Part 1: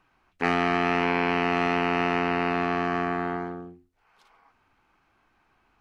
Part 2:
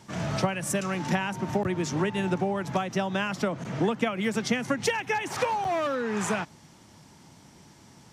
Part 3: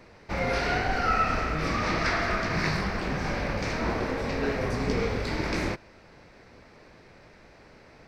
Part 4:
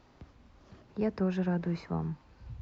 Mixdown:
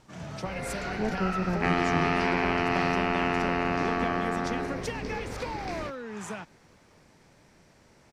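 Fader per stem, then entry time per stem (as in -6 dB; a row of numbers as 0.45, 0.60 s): -2.5, -9.5, -8.5, 0.0 dB; 1.20, 0.00, 0.15, 0.00 s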